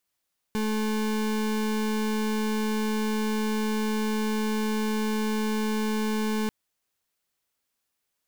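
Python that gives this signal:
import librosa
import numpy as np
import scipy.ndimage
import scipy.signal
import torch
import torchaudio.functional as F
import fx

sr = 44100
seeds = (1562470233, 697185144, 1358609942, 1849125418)

y = fx.pulse(sr, length_s=5.94, hz=216.0, level_db=-26.5, duty_pct=33)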